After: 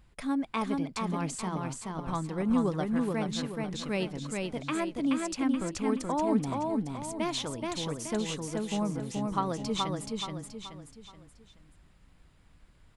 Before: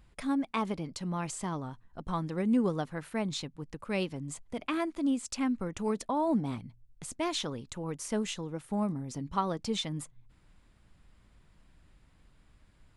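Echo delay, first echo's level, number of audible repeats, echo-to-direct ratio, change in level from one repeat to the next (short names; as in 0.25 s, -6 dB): 0.427 s, -3.0 dB, 4, -2.0 dB, -8.0 dB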